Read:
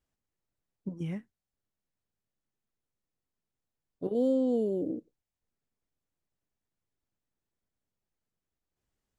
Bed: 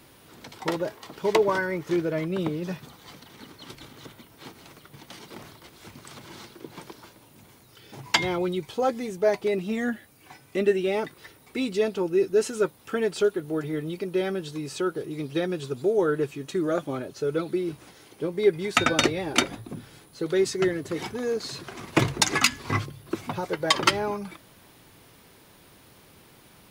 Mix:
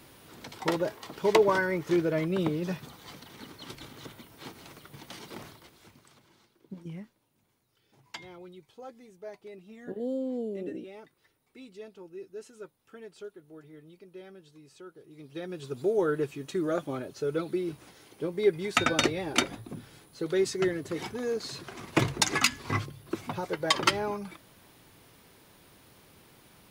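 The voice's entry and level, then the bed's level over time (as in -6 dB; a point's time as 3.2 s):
5.85 s, -5.5 dB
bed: 5.41 s -0.5 dB
6.39 s -20.5 dB
14.98 s -20.5 dB
15.8 s -3.5 dB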